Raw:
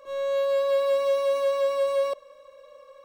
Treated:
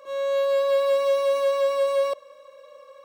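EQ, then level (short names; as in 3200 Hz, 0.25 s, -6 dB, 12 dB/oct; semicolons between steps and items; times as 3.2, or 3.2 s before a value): HPF 87 Hz 12 dB/oct; low shelf 250 Hz -6.5 dB; +3.0 dB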